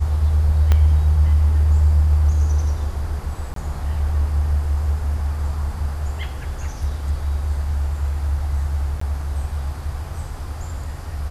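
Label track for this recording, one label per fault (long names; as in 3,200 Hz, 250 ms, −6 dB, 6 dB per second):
0.720000	0.720000	click −6 dBFS
3.540000	3.560000	drop-out 23 ms
9.000000	9.010000	drop-out 14 ms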